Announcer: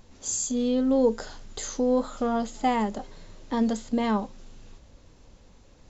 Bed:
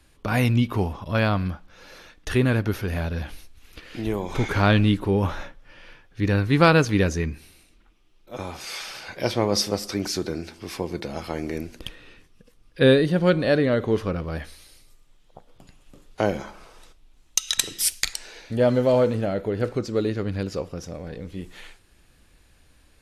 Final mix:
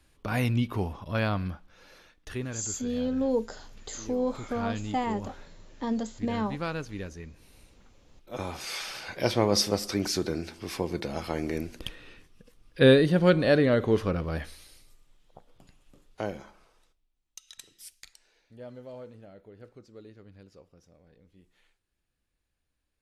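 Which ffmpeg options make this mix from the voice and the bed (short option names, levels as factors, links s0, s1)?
-filter_complex "[0:a]adelay=2300,volume=0.562[s0];[1:a]volume=2.99,afade=t=out:st=1.58:d=0.99:silence=0.281838,afade=t=in:st=7.34:d=0.44:silence=0.16788,afade=t=out:st=14.35:d=2.76:silence=0.0707946[s1];[s0][s1]amix=inputs=2:normalize=0"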